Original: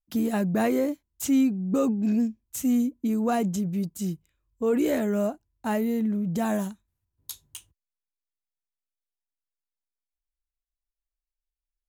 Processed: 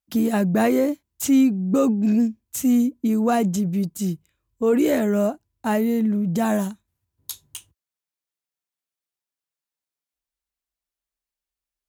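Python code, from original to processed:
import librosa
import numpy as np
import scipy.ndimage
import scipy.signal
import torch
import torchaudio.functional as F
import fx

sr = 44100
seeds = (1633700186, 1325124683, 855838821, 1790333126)

y = scipy.signal.sosfilt(scipy.signal.butter(2, 70.0, 'highpass', fs=sr, output='sos'), x)
y = y * 10.0 ** (5.0 / 20.0)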